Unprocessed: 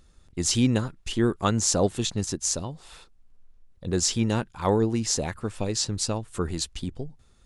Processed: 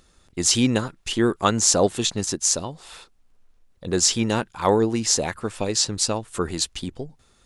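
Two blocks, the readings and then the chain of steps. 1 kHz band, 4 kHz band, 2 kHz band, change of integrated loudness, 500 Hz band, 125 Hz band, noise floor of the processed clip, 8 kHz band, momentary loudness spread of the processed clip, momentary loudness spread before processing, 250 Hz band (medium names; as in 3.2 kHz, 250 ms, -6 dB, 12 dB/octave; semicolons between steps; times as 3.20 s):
+5.5 dB, +6.0 dB, +6.0 dB, +4.5 dB, +4.5 dB, -1.5 dB, -60 dBFS, +6.0 dB, 16 LU, 13 LU, +2.0 dB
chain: bass shelf 190 Hz -10.5 dB; trim +6 dB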